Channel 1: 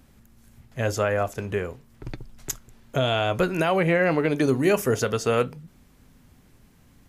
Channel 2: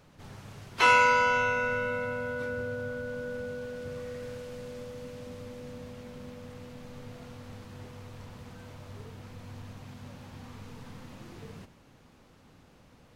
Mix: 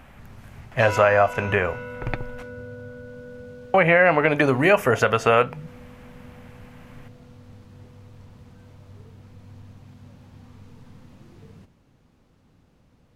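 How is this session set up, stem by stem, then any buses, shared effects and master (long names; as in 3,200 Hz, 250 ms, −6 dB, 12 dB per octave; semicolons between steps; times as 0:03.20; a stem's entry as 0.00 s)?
−1.5 dB, 0.00 s, muted 0:02.43–0:03.74, no send, flat-topped bell 1,300 Hz +15 dB 2.8 octaves
−7.0 dB, 0.00 s, no send, no processing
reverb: not used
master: low-shelf EQ 340 Hz +8 dB; downward compressor 2 to 1, threshold −17 dBFS, peak gain reduction 7 dB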